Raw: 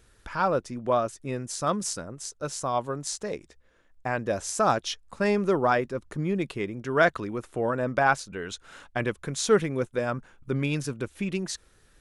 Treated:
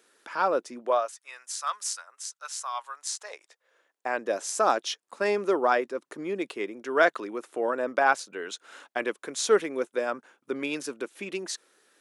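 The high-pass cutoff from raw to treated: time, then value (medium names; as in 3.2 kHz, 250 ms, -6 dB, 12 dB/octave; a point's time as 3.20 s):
high-pass 24 dB/octave
0.80 s 280 Hz
1.22 s 1 kHz
2.97 s 1 kHz
4.14 s 290 Hz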